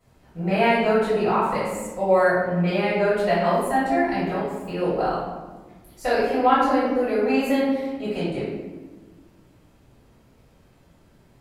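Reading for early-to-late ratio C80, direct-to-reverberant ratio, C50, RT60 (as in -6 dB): 2.0 dB, -16.0 dB, -1.5 dB, 1.3 s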